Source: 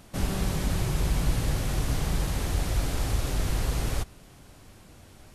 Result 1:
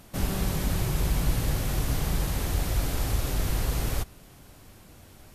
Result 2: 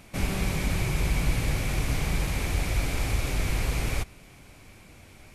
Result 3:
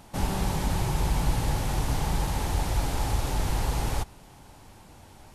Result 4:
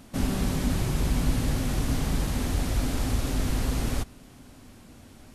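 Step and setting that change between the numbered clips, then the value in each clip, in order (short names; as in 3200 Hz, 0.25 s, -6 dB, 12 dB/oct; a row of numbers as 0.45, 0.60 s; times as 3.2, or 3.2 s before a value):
bell, frequency: 14000, 2300, 870, 250 Hz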